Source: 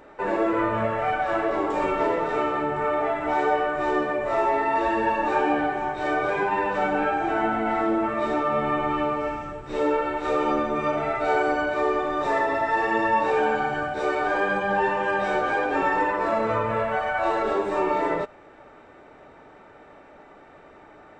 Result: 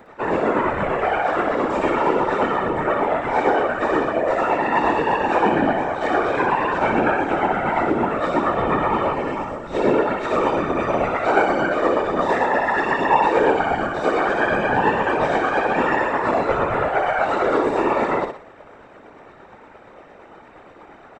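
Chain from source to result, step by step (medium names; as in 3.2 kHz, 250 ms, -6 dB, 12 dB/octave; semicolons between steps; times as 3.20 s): tremolo 8.6 Hz, depth 50%; on a send: feedback delay 61 ms, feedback 40%, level -4.5 dB; on the sum: whisper effect; trim +5 dB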